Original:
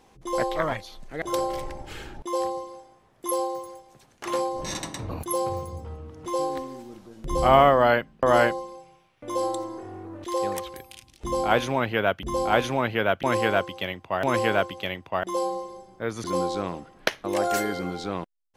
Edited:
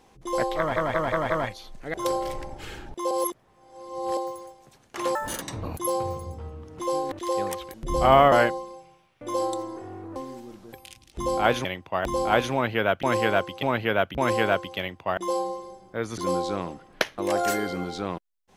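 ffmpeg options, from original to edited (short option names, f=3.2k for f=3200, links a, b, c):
-filter_complex "[0:a]asplit=18[a][b][c][d][e][f][g][h][i][j][k][l][m][n][o][p][q][r];[a]atrim=end=0.762[s];[b]atrim=start=0.578:end=0.762[t];[c]atrim=start=0.578:end=0.762[u];[d]atrim=start=0.578:end=0.762[v];[e]atrim=start=0.578:end=2.392[w];[f]atrim=start=2.388:end=3.452,asetpts=PTS-STARTPTS,areverse[x];[g]atrim=start=3.448:end=4.434[y];[h]atrim=start=4.43:end=4.88,asetpts=PTS-STARTPTS,asetrate=74088,aresample=44100,atrim=end_sample=11812,asetpts=PTS-STARTPTS[z];[i]atrim=start=4.876:end=6.582[aa];[j]atrim=start=10.168:end=10.792[ab];[k]atrim=start=7.148:end=7.732[ac];[l]atrim=start=8.328:end=10.172[ad];[m]atrim=start=6.578:end=7.152[ae];[n]atrim=start=10.788:end=11.712[af];[o]atrim=start=13.828:end=14.242[ag];[p]atrim=start=12.258:end=13.832[ah];[q]atrim=start=11.708:end=12.262[ai];[r]atrim=start=14.238[aj];[s][t]acrossfade=d=0.004:c1=hsin:c2=hsin[ak];[ak][u]acrossfade=d=0.004:c1=hsin:c2=hsin[al];[al][v]acrossfade=d=0.004:c1=hsin:c2=hsin[am];[am][w]acrossfade=d=0.004:c1=hsin:c2=hsin[an];[an][x]acrossfade=d=0.004:c1=hsin:c2=hsin[ao];[ao][y]acrossfade=d=0.004:c1=hsin:c2=hsin[ap];[ap][z]acrossfade=d=0.004:c1=hsin:c2=hsin[aq];[aq][aa]acrossfade=d=0.004:c1=hsin:c2=hsin[ar];[ar][ab]acrossfade=d=0.004:c1=hsin:c2=hsin[as];[as][ac]acrossfade=d=0.004:c1=hsin:c2=hsin[at];[at][ad]acrossfade=d=0.004:c1=hsin:c2=hsin[au];[au][ae]acrossfade=d=0.004:c1=hsin:c2=hsin[av];[av][af]acrossfade=d=0.004:c1=hsin:c2=hsin[aw];[aw][ag]acrossfade=d=0.004:c1=hsin:c2=hsin[ax];[ax][ah]acrossfade=d=0.004:c1=hsin:c2=hsin[ay];[ay][ai]acrossfade=d=0.004:c1=hsin:c2=hsin[az];[az][aj]acrossfade=d=0.004:c1=hsin:c2=hsin"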